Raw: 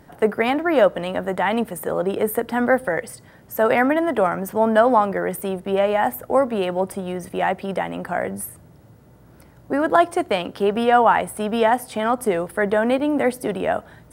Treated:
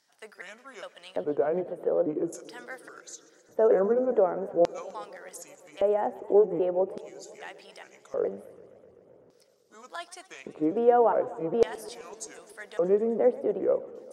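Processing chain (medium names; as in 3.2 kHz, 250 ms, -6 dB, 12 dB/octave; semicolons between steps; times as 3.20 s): pitch shift switched off and on -4.5 st, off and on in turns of 412 ms; LFO band-pass square 0.43 Hz 460–5500 Hz; modulated delay 128 ms, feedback 78%, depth 179 cents, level -20 dB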